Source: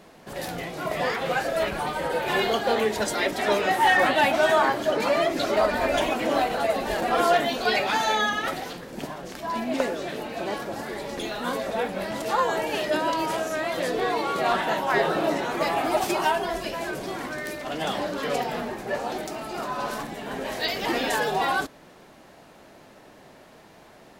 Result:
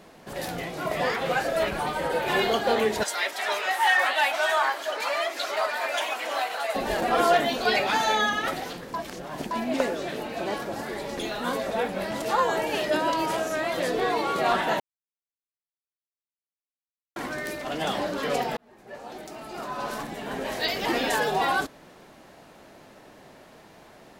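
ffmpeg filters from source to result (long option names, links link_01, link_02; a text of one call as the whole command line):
ffmpeg -i in.wav -filter_complex "[0:a]asettb=1/sr,asplit=3[link_01][link_02][link_03];[link_01]atrim=end=3.034[link_04];[link_02]atrim=start=3.03:end=6.75,asetpts=PTS-STARTPTS,afade=type=in:duration=0.004:curve=qsin,afade=type=out:start_time=3.716:duration=0.004:curve=qsin,highpass=870[link_05];[link_03]atrim=start=6.746[link_06];[link_04][link_05]acrossfade=duration=0.004:curve1=hsin:curve2=qsin[link_07];[link_07][link_06]acrossfade=duration=0.004:curve1=qsin:curve2=hsin,asplit=6[link_08][link_09][link_10][link_11][link_12][link_13];[link_08]atrim=end=8.942[link_14];[link_09]atrim=start=8.938:end=9.512,asetpts=PTS-STARTPTS,areverse[link_15];[link_10]atrim=start=9.508:end=14.8,asetpts=PTS-STARTPTS,afade=type=out:start_time=5.288:duration=0.004:curve=hsin[link_16];[link_11]atrim=start=14.8:end=17.16,asetpts=PTS-STARTPTS,volume=0[link_17];[link_12]atrim=start=17.16:end=18.57,asetpts=PTS-STARTPTS,afade=type=in:duration=0.004:curve=hsin,afade=type=out:start_time=1.406:duration=0.004:curve=hsin[link_18];[link_13]atrim=start=18.57,asetpts=PTS-STARTPTS,afade=type=in:duration=1.65[link_19];[link_14][link_15]acrossfade=duration=0.004:curve1=hsin:curve2=hsin[link_20];[link_16][link_17][link_18][link_19]concat=n=4:v=0:a=1[link_21];[link_20][link_21]acrossfade=duration=0.004:curve1=hsin:curve2=hsin" out.wav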